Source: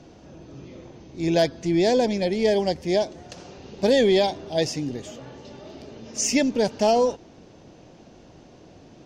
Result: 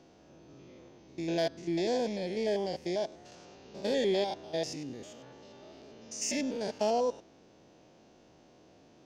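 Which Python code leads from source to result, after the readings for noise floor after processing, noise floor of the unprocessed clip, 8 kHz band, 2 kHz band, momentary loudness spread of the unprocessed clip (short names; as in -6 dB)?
-60 dBFS, -50 dBFS, -9.5 dB, -10.5 dB, 22 LU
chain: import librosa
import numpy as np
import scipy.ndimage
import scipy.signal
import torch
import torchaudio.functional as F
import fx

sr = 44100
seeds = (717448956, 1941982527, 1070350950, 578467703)

y = fx.spec_steps(x, sr, hold_ms=100)
y = fx.low_shelf(y, sr, hz=170.0, db=-9.5)
y = F.gain(torch.from_numpy(y), -7.0).numpy()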